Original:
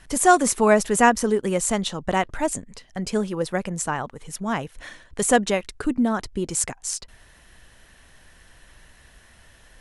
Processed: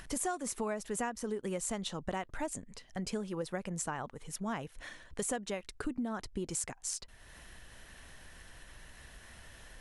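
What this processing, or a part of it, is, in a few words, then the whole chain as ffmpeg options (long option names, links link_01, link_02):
upward and downward compression: -af "acompressor=mode=upward:threshold=-36dB:ratio=2.5,acompressor=threshold=-25dB:ratio=8,volume=-7.5dB"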